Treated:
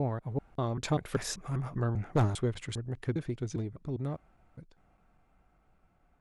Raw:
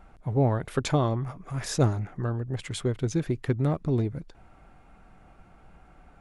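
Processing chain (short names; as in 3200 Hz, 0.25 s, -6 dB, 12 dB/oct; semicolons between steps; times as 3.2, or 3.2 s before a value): slices in reverse order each 0.198 s, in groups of 3; Doppler pass-by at 1.84, 8 m/s, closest 7.1 m; wavefolder -16.5 dBFS; gain -1.5 dB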